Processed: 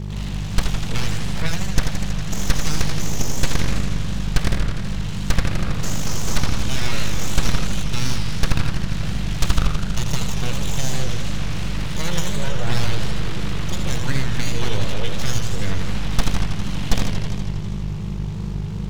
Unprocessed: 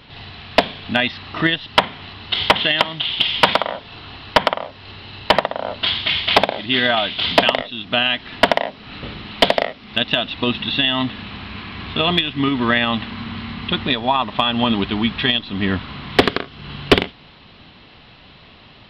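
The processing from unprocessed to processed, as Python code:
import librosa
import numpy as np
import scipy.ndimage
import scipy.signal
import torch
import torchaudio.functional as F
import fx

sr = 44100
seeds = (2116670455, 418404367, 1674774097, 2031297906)

p1 = np.abs(x)
p2 = fx.dmg_buzz(p1, sr, base_hz=50.0, harmonics=4, level_db=-33.0, tilt_db=-2, odd_only=False)
p3 = fx.bass_treble(p2, sr, bass_db=7, treble_db=1)
p4 = fx.fuzz(p3, sr, gain_db=27.0, gate_db=-34.0)
p5 = p3 + (p4 * librosa.db_to_amplitude(-6.0))
p6 = fx.echo_warbled(p5, sr, ms=81, feedback_pct=79, rate_hz=2.8, cents=203, wet_db=-6.5)
y = p6 * librosa.db_to_amplitude(-8.5)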